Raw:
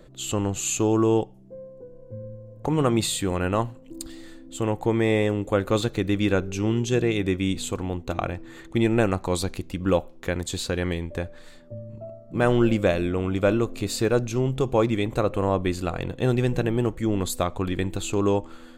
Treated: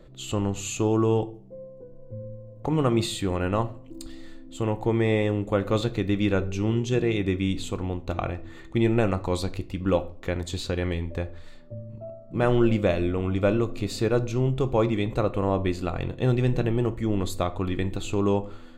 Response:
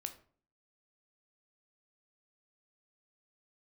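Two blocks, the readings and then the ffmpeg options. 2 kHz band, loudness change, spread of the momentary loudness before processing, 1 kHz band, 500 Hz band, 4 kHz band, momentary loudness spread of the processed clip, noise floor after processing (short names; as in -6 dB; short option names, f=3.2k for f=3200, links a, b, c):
-3.0 dB, -1.5 dB, 17 LU, -2.0 dB, -1.5 dB, -3.0 dB, 17 LU, -45 dBFS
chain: -filter_complex "[0:a]bandreject=f=1.6k:w=14,asplit=2[a][b];[1:a]atrim=start_sample=2205,lowpass=6.4k,lowshelf=f=120:g=7.5[c];[b][c]afir=irnorm=-1:irlink=0,volume=3dB[d];[a][d]amix=inputs=2:normalize=0,volume=-8dB"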